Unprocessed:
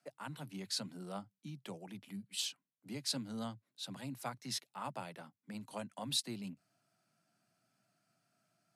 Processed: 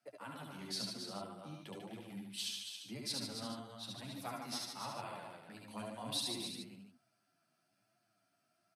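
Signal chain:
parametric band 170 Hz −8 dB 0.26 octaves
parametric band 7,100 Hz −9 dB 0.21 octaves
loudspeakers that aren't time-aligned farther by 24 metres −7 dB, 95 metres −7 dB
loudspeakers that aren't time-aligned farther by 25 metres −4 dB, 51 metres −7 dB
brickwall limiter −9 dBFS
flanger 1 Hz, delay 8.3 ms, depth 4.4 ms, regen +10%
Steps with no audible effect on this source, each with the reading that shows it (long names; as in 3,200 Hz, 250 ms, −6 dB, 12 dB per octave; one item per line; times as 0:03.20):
brickwall limiter −9 dBFS: peak of its input −21.5 dBFS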